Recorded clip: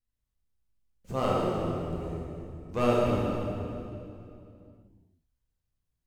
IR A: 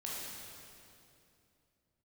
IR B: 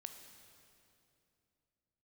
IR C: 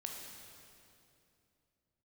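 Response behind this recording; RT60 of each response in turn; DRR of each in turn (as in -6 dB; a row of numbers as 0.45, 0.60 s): A; 2.7, 2.7, 2.7 s; -6.0, 6.0, 0.0 dB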